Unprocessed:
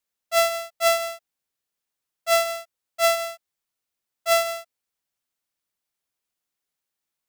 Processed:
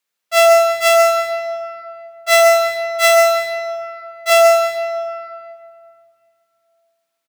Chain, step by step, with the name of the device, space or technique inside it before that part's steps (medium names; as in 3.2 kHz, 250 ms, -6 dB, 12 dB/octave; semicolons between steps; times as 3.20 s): PA in a hall (high-pass 160 Hz 12 dB/octave; peaking EQ 2.2 kHz +5 dB 2.8 oct; delay 136 ms -5.5 dB; reverberation RT60 2.7 s, pre-delay 15 ms, DRR 2.5 dB); 2.28–4.30 s: comb 2 ms, depth 74%; trim +3 dB